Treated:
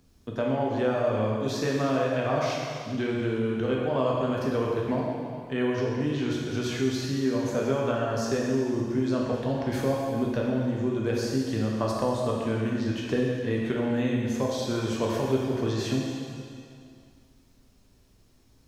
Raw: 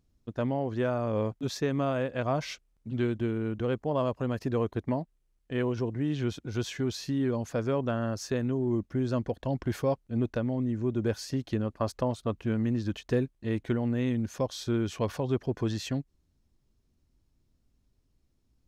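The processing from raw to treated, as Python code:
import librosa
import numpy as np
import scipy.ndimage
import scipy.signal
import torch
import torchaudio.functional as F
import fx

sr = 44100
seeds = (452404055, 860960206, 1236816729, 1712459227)

y = fx.low_shelf(x, sr, hz=200.0, db=-6.0)
y = fx.rev_plate(y, sr, seeds[0], rt60_s=1.7, hf_ratio=0.95, predelay_ms=0, drr_db=-3.5)
y = fx.band_squash(y, sr, depth_pct=40)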